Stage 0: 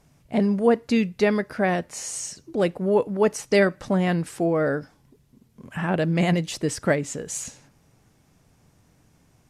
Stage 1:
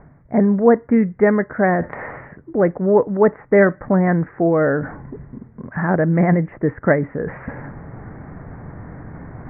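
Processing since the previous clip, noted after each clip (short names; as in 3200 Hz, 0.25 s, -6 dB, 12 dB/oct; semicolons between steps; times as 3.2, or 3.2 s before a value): steep low-pass 2000 Hz 72 dB/oct; reverse; upward compressor, threshold -24 dBFS; reverse; gain +6 dB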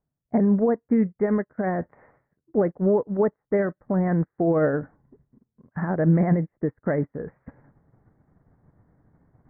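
limiter -12.5 dBFS, peak gain reduction 11 dB; high shelf 2100 Hz -12 dB; upward expander 2.5:1, over -42 dBFS; gain +2 dB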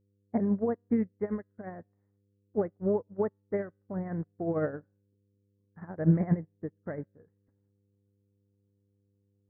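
buzz 100 Hz, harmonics 5, -39 dBFS -6 dB/oct; resonator 79 Hz, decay 0.65 s, harmonics all, mix 30%; upward expander 2.5:1, over -38 dBFS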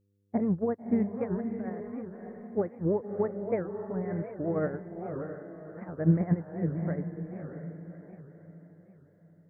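diffused feedback echo 0.602 s, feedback 42%, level -6 dB; record warp 78 rpm, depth 250 cents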